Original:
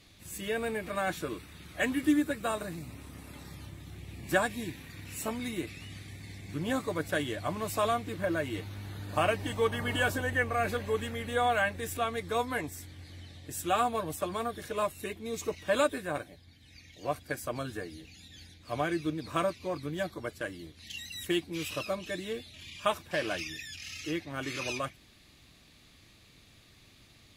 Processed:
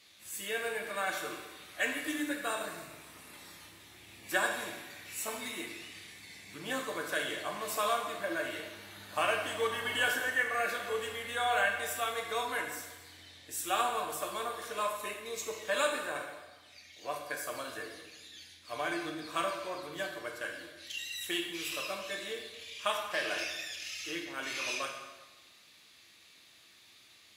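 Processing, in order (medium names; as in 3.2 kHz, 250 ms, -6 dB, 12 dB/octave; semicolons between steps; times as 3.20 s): high-pass 1.1 kHz 6 dB/octave; plate-style reverb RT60 1.2 s, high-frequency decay 0.85×, DRR 1 dB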